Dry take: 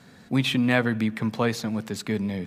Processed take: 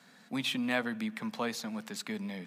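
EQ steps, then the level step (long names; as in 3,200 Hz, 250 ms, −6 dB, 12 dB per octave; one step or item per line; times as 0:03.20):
dynamic equaliser 1,800 Hz, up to −4 dB, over −36 dBFS, Q 0.79
high-pass filter 200 Hz 24 dB per octave
parametric band 360 Hz −10 dB 1.2 octaves
−4.0 dB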